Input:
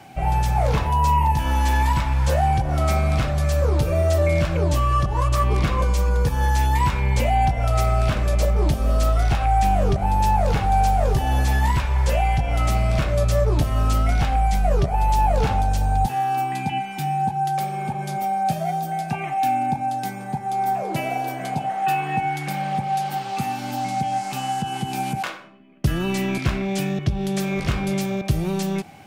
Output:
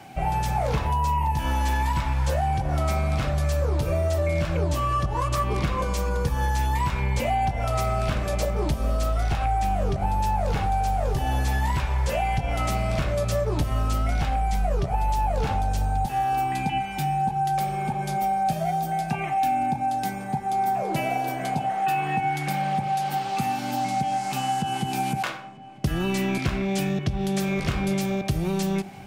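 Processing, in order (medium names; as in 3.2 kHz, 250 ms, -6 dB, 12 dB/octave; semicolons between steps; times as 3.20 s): hum notches 60/120 Hz; compression, threshold -20 dBFS, peak gain reduction 6.5 dB; on a send: filtered feedback delay 951 ms, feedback 70%, low-pass 2.9 kHz, level -21.5 dB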